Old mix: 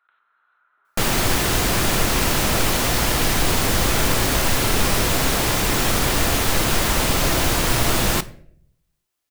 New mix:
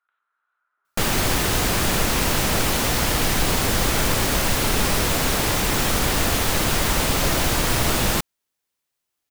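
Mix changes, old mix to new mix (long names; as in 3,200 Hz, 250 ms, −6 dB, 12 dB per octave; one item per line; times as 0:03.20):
speech −11.5 dB
background: send off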